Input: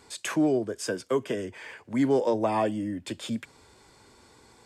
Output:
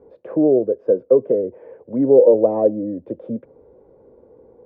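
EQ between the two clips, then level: resonant low-pass 510 Hz, resonance Q 6.2; distance through air 150 m; peaking EQ 100 Hz -5.5 dB 0.39 oct; +3.0 dB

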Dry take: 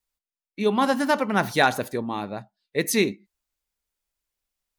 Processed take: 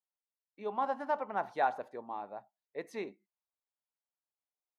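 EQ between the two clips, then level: band-pass filter 790 Hz, Q 1.9; -7.0 dB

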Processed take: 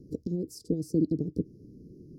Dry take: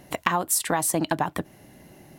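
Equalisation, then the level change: Chebyshev band-stop 460–4900 Hz, order 5; distance through air 310 m; +2.5 dB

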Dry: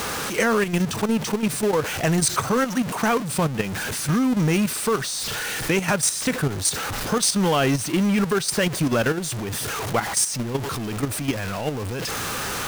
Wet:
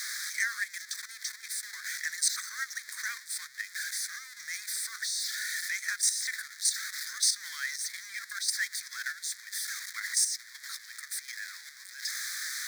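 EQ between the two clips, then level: elliptic high-pass 1.8 kHz, stop band 60 dB; Butterworth band-stop 2.8 kHz, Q 1.4; treble shelf 5.5 kHz -9 dB; +1.5 dB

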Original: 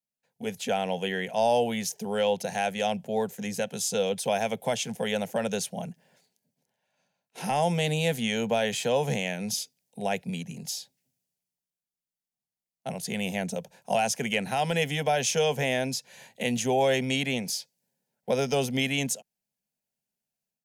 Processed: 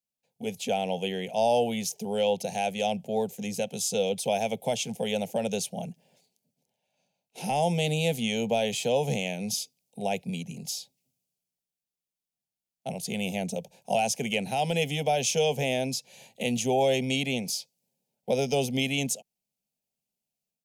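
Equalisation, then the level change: high-order bell 1.4 kHz -13 dB 1.1 oct; 0.0 dB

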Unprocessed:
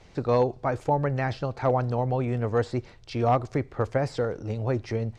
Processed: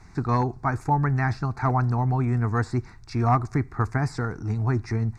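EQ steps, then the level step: static phaser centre 1.3 kHz, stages 4; +6.0 dB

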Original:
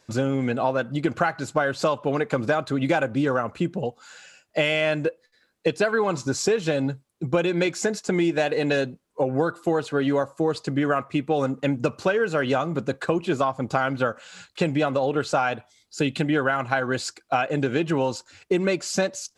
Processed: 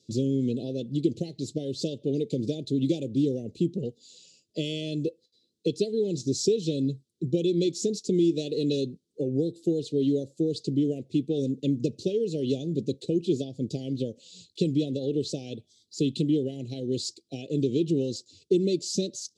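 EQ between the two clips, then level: band-pass 100–7500 Hz; elliptic band-stop 410–3700 Hz, stop band 80 dB; 0.0 dB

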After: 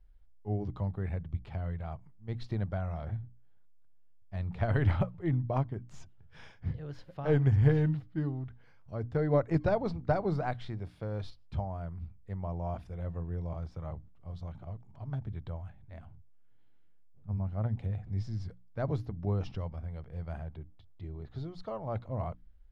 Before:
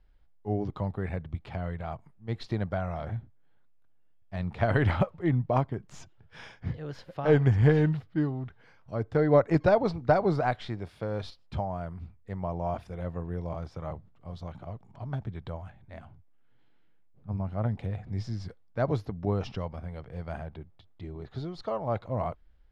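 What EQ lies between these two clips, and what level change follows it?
bass shelf 140 Hz +11.5 dB; hum notches 60/120/180/240/300 Hz; -7.5 dB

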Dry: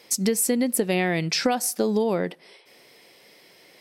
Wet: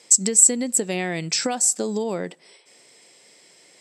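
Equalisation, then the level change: high-pass 94 Hz; resonant low-pass 7.7 kHz, resonance Q 13; -3.0 dB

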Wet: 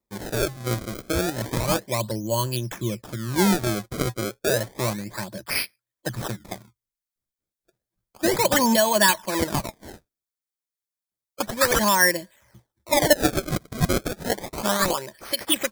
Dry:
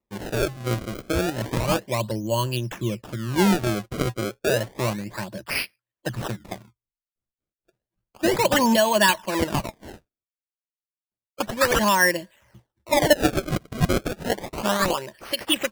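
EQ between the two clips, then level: treble shelf 4.2 kHz +6.5 dB; band-stop 2.8 kHz, Q 5.8; -1.0 dB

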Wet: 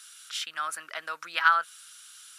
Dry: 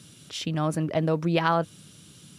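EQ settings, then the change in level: dynamic bell 5.9 kHz, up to -4 dB, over -48 dBFS, Q 1.8; resonant high-pass 1.4 kHz, resonance Q 5; treble shelf 3.3 kHz +12 dB; -6.0 dB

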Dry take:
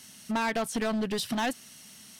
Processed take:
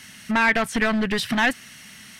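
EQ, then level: bass shelf 210 Hz +11 dB; peaking EQ 1.9 kHz +14.5 dB 1.5 oct; +1.0 dB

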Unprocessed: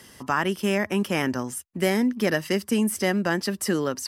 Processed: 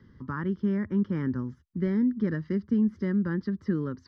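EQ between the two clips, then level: tape spacing loss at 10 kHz 41 dB; bass shelf 270 Hz +11.5 dB; static phaser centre 2.6 kHz, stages 6; -5.5 dB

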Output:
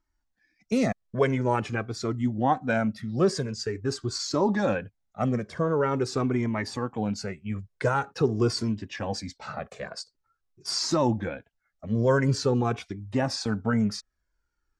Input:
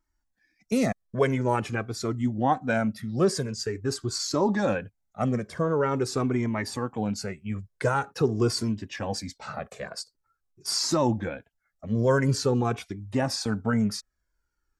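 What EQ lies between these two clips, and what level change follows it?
low-pass 6.7 kHz 12 dB/octave; 0.0 dB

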